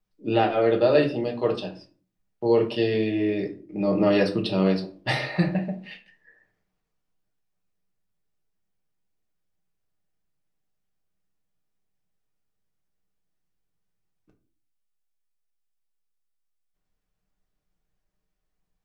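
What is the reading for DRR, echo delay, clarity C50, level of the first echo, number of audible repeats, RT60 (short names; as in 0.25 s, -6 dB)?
0.5 dB, none, 12.5 dB, none, none, 0.40 s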